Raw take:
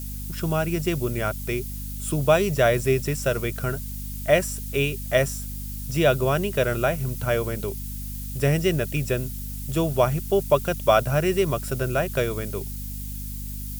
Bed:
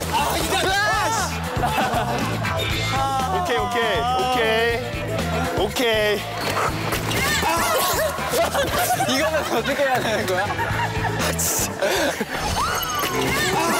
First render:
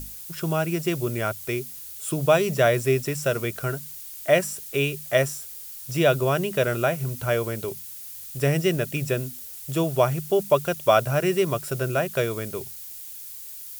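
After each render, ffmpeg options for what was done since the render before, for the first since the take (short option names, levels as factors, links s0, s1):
-af "bandreject=f=50:t=h:w=6,bandreject=f=100:t=h:w=6,bandreject=f=150:t=h:w=6,bandreject=f=200:t=h:w=6,bandreject=f=250:t=h:w=6"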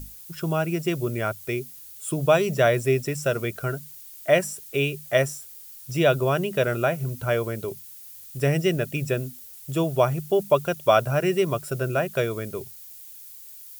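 -af "afftdn=nr=6:nf=-39"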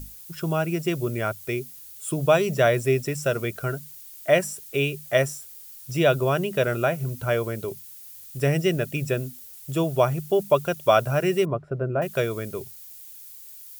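-filter_complex "[0:a]asettb=1/sr,asplit=3[s0][s1][s2];[s0]atrim=end=11.454[s3];[s1]atrim=start=11.45:end=12.02,asetpts=PTS-STARTPTS,afade=t=in:d=0.004:c=qsin,afade=t=out:st=0.566:d=0.004:c=qsin,lowpass=1100[s4];[s2]atrim=start=12.016[s5];[s3][s4]acrossfade=d=0.004:c1=hsin:c2=qsin[s6];[s6][s5]acrossfade=d=0.004:c1=qsin:c2=hsin"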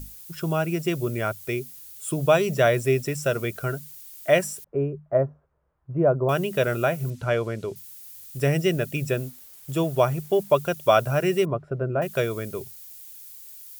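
-filter_complex "[0:a]asettb=1/sr,asplit=3[s0][s1][s2];[s0]atrim=end=4.644[s3];[s1]atrim=start=4.64:end=6.29,asetpts=PTS-STARTPTS,afade=t=in:d=0.004:c=qsin,afade=t=out:st=1.646:d=0.004:c=qsin,lowpass=f=1100:w=0.5412,lowpass=f=1100:w=1.3066[s4];[s2]atrim=start=6.286[s5];[s3][s4]acrossfade=d=0.004:c1=hsin:c2=qsin[s6];[s6][s5]acrossfade=d=0.004:c1=qsin:c2=hsin,asettb=1/sr,asplit=3[s7][s8][s9];[s7]atrim=end=7.104[s10];[s8]atrim=start=7.1:end=7.76,asetpts=PTS-STARTPTS,afade=t=in:d=0.004:c=qsin,afade=t=out:st=0.656:d=0.004:c=qsin,lowpass=6500[s11];[s9]atrim=start=7.756[s12];[s10][s11]acrossfade=d=0.004:c1=hsin:c2=qsin[s13];[s13][s12]acrossfade=d=0.004:c1=qsin:c2=hsin,asettb=1/sr,asplit=3[s14][s15][s16];[s14]atrim=end=9.164[s17];[s15]atrim=start=9.16:end=10.58,asetpts=PTS-STARTPTS,afade=t=in:d=0.004:c=qsin,afade=t=out:st=1.416:d=0.004:c=qsin,aeval=exprs='sgn(val(0))*max(abs(val(0))-0.00282,0)':c=same[s18];[s16]atrim=start=10.576[s19];[s17][s18]acrossfade=d=0.004:c1=hsin:c2=qsin[s20];[s20][s19]acrossfade=d=0.004:c1=qsin:c2=hsin"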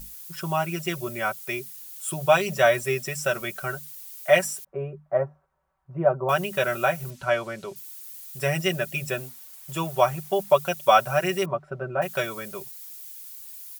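-af "lowshelf=f=560:t=q:w=1.5:g=-7.5,aecho=1:1:5.3:0.77"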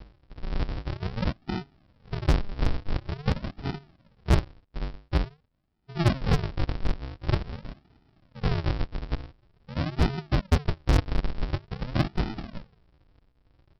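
-af "aresample=11025,acrusher=samples=39:mix=1:aa=0.000001:lfo=1:lforange=39:lforate=0.47,aresample=44100,asoftclip=type=hard:threshold=0.178"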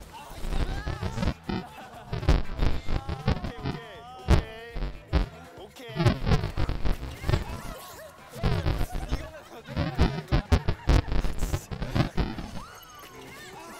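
-filter_complex "[1:a]volume=0.0708[s0];[0:a][s0]amix=inputs=2:normalize=0"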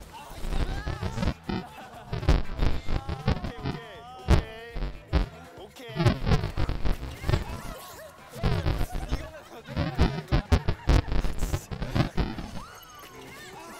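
-af anull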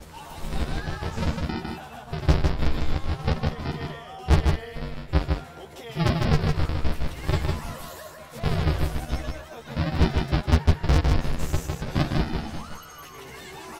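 -filter_complex "[0:a]asplit=2[s0][s1];[s1]adelay=13,volume=0.631[s2];[s0][s2]amix=inputs=2:normalize=0,aecho=1:1:154:0.668"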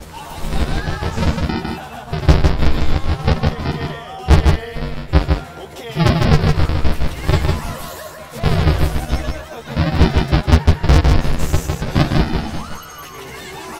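-af "volume=2.82,alimiter=limit=0.794:level=0:latency=1"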